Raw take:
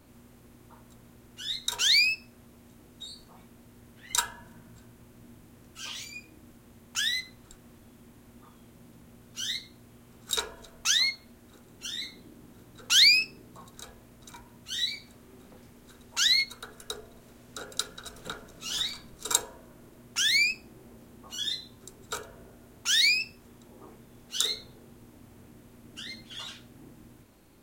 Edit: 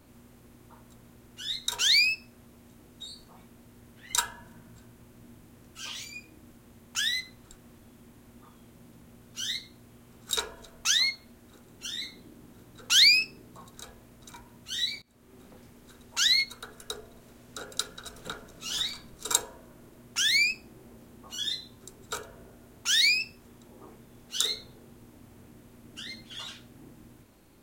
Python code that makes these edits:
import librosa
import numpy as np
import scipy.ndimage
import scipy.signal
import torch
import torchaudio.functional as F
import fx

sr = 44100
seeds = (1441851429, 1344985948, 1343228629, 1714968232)

y = fx.edit(x, sr, fx.fade_in_from(start_s=15.02, length_s=0.39, floor_db=-24.0), tone=tone)